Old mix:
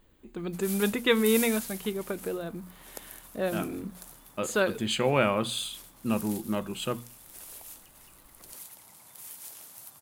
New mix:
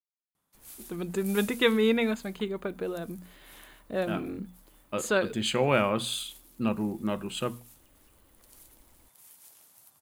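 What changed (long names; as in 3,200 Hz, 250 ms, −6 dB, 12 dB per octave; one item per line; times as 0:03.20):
speech: entry +0.55 s
background −10.0 dB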